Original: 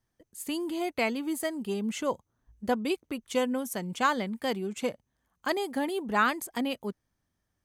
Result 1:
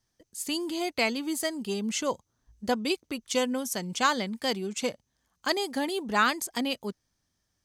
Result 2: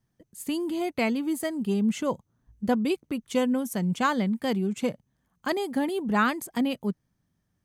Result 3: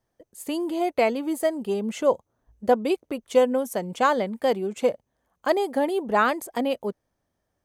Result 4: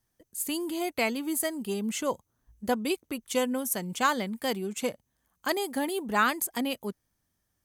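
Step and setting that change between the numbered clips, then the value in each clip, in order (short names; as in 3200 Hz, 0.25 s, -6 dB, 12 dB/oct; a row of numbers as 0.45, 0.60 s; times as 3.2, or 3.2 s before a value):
bell, frequency: 5300, 160, 570, 16000 Hz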